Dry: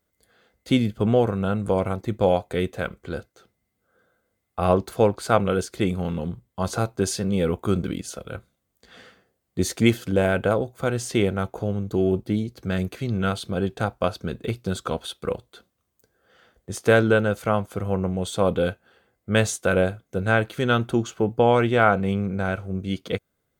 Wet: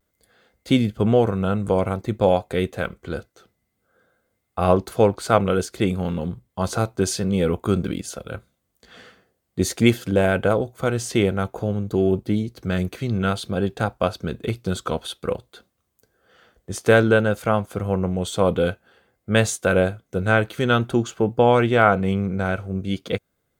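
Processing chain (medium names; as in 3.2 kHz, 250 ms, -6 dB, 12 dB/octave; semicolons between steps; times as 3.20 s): vibrato 0.53 Hz 27 cents; trim +2 dB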